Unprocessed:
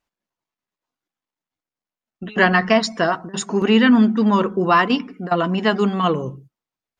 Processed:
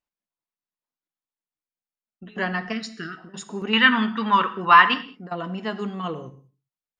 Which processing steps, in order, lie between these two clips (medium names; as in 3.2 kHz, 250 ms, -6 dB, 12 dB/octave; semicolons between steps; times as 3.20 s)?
2.72–3.18 s: time-frequency box 470–1200 Hz -25 dB; 3.73–4.94 s: high-order bell 1.9 kHz +15.5 dB 2.5 oct; gated-style reverb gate 230 ms falling, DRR 10.5 dB; trim -11.5 dB